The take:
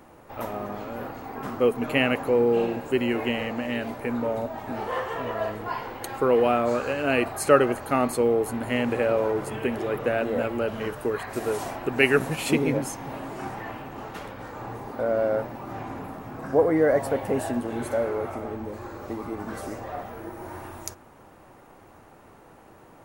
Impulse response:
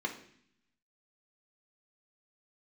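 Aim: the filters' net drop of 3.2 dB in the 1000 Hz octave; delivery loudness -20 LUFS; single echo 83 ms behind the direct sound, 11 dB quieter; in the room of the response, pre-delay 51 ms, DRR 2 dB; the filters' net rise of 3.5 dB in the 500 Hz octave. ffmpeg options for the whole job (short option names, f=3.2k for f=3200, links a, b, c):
-filter_complex "[0:a]equalizer=f=500:t=o:g=5.5,equalizer=f=1k:t=o:g=-7,aecho=1:1:83:0.282,asplit=2[a][b];[1:a]atrim=start_sample=2205,adelay=51[c];[b][c]afir=irnorm=-1:irlink=0,volume=-6.5dB[d];[a][d]amix=inputs=2:normalize=0,volume=0.5dB"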